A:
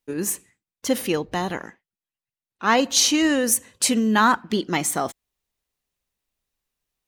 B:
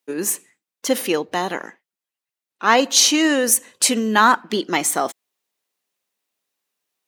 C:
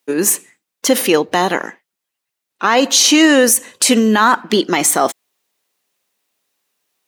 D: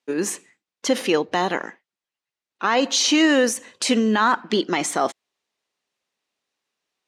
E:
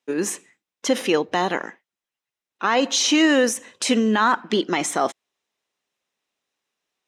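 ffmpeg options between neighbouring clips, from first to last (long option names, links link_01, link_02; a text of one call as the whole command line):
ffmpeg -i in.wav -af "highpass=280,volume=4dB" out.wav
ffmpeg -i in.wav -af "alimiter=level_in=9.5dB:limit=-1dB:release=50:level=0:latency=1,volume=-1dB" out.wav
ffmpeg -i in.wav -af "lowpass=6000,volume=-6.5dB" out.wav
ffmpeg -i in.wav -af "bandreject=frequency=4500:width=11" out.wav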